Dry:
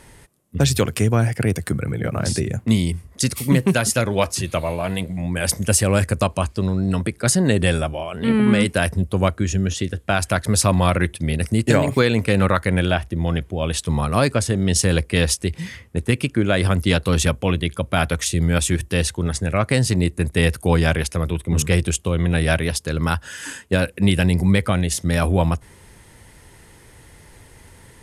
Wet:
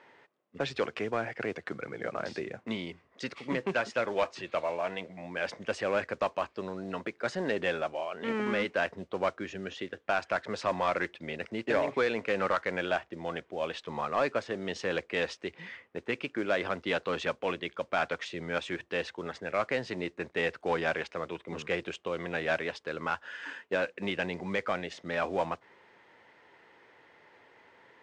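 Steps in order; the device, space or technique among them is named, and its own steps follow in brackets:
carbon microphone (band-pass filter 450–2,700 Hz; soft clipping −13.5 dBFS, distortion −17 dB; noise that follows the level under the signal 22 dB)
Bessel low-pass filter 5,000 Hz, order 8
level −5 dB

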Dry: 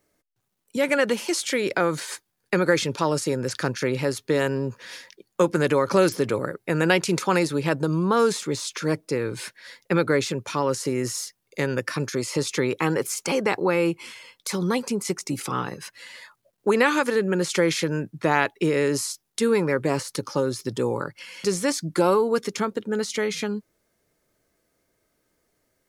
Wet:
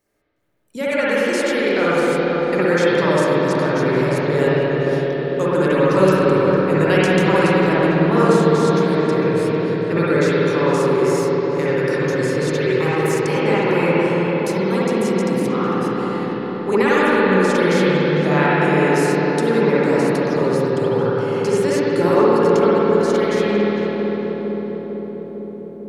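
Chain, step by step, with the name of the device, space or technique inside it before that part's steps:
dub delay into a spring reverb (feedback echo with a low-pass in the loop 452 ms, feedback 75%, low-pass 1,100 Hz, level −3.5 dB; spring reverb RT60 3.3 s, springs 53/58 ms, chirp 45 ms, DRR −9 dB)
level −4 dB

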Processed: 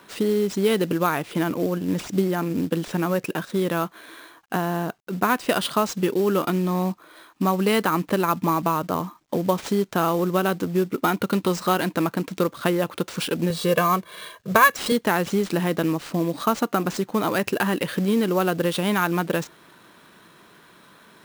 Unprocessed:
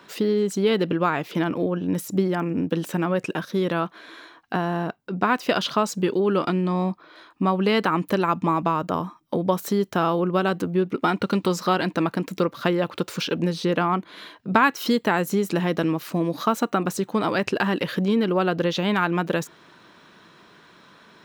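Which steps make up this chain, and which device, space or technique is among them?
0:13.50–0:14.92: comb filter 1.8 ms, depth 89%
early companding sampler (sample-rate reduction 13,000 Hz, jitter 0%; log-companded quantiser 6 bits)

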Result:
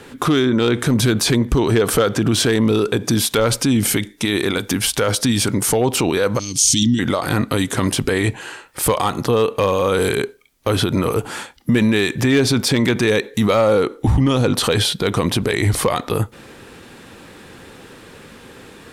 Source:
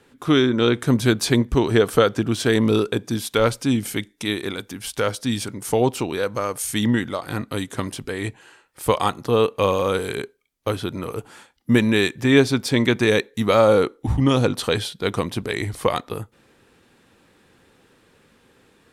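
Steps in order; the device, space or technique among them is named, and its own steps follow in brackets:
loud club master (downward compressor 1.5 to 1, threshold −25 dBFS, peak gain reduction 6 dB; hard clipping −13.5 dBFS, distortion −24 dB; boost into a limiter +23.5 dB)
0:06.39–0:06.99: drawn EQ curve 300 Hz 0 dB, 510 Hz −28 dB, 1,500 Hz −25 dB, 3,100 Hz +4 dB, 6,100 Hz +14 dB, 11,000 Hz −10 dB
level −7.5 dB

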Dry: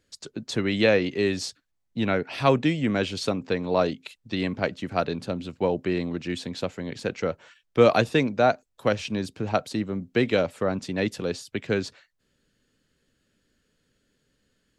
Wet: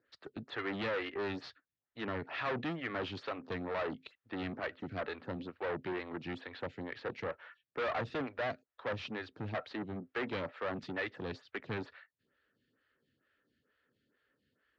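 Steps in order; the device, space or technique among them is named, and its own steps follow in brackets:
vibe pedal into a guitar amplifier (phaser with staggered stages 2.2 Hz; tube saturation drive 31 dB, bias 0.45; loudspeaker in its box 81–4,000 Hz, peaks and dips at 190 Hz −5 dB, 1,300 Hz +6 dB, 1,800 Hz +7 dB)
level −2.5 dB

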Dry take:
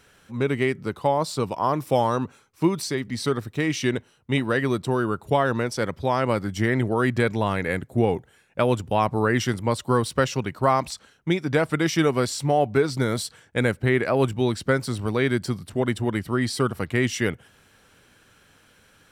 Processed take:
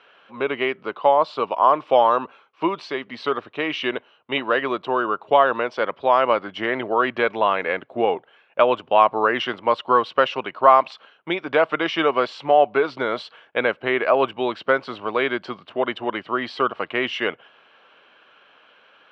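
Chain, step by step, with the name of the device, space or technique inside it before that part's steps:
phone earpiece (loudspeaker in its box 490–3,200 Hz, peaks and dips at 630 Hz +4 dB, 1,100 Hz +5 dB, 1,900 Hz −5 dB, 2,900 Hz +5 dB)
level +5 dB

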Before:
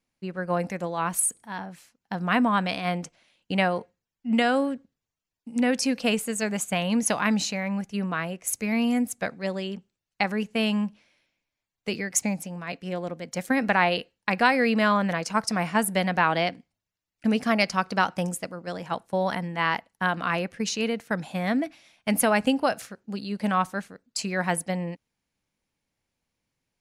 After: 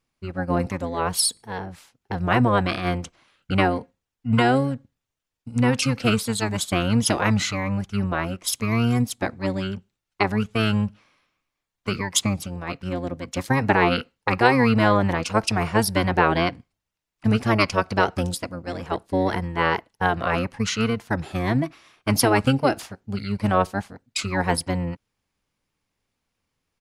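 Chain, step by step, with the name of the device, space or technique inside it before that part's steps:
octave pedal (pitch-shifted copies added −12 semitones −1 dB)
level +1 dB

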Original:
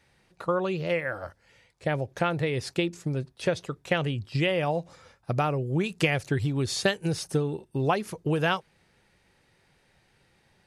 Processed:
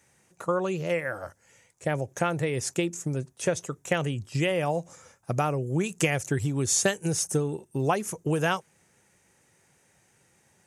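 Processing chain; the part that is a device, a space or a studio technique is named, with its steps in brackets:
budget condenser microphone (high-pass filter 87 Hz; high shelf with overshoot 5,400 Hz +7.5 dB, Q 3)

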